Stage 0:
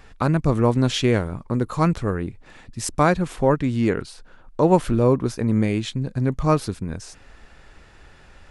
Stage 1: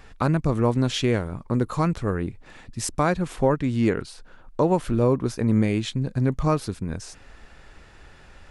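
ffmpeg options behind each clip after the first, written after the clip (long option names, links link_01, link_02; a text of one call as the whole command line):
ffmpeg -i in.wav -af "alimiter=limit=-10dB:level=0:latency=1:release=416" out.wav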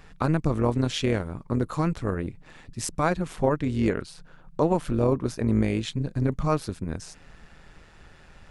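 ffmpeg -i in.wav -af "tremolo=f=160:d=0.571" out.wav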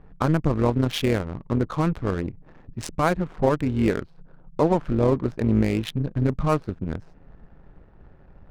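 ffmpeg -i in.wav -af "adynamicsmooth=sensitivity=7.5:basefreq=570,volume=2.5dB" out.wav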